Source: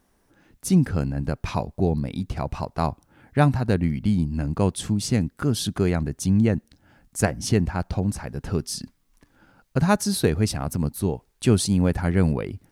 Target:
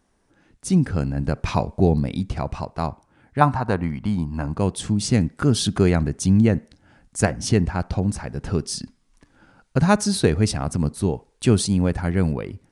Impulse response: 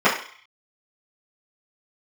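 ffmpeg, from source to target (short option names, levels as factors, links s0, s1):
-filter_complex "[0:a]asettb=1/sr,asplit=3[s0][s1][s2];[s0]atrim=end=3.414[s3];[s1]atrim=start=3.41:end=4.53,asetpts=PTS-STARTPTS,afade=t=in:d=0.004:c=qsin,afade=t=out:st=1.116:d=0.004:c=qsin,equalizer=f=1000:t=o:w=1.2:g=15[s4];[s2]atrim=start=4.526[s5];[s3][s4]acrossfade=d=0.004:c1=hsin:c2=qsin[s6];[s6][s5]acrossfade=d=0.004:c1=qsin:c2=hsin,dynaudnorm=f=240:g=11:m=3.76,asplit=2[s7][s8];[1:a]atrim=start_sample=2205,adelay=42[s9];[s8][s9]afir=irnorm=-1:irlink=0,volume=0.00531[s10];[s7][s10]amix=inputs=2:normalize=0,aresample=22050,aresample=44100,volume=0.891"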